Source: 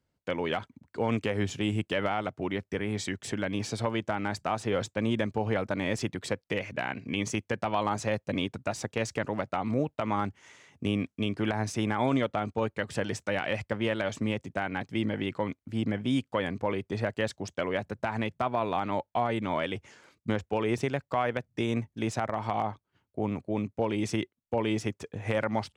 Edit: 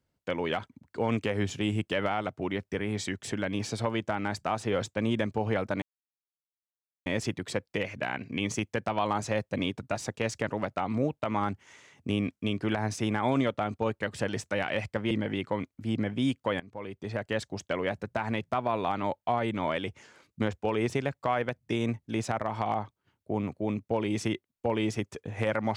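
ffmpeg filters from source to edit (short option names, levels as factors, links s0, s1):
-filter_complex "[0:a]asplit=4[s0][s1][s2][s3];[s0]atrim=end=5.82,asetpts=PTS-STARTPTS,afade=t=out:st=5.816:d=0.004:c=hsin,apad=pad_dur=1.24[s4];[s1]atrim=start=5.82:end=13.872,asetpts=PTS-STARTPTS,afade=t=in:d=0.004:c=hsin[s5];[s2]atrim=start=14.988:end=16.48,asetpts=PTS-STARTPTS,afade=t=out:st=1.488:d=0.004:c=hsin:silence=0.105925[s6];[s3]atrim=start=16.48,asetpts=PTS-STARTPTS,afade=t=in:d=0.84:silence=0.105925[s7];[s4][s5]concat=n=2:v=0:a=1[s8];[s6][s7]concat=n=2:v=0:a=1[s9];[s8][s9]acrossfade=d=0.004:c1=hsin:c2=hsin"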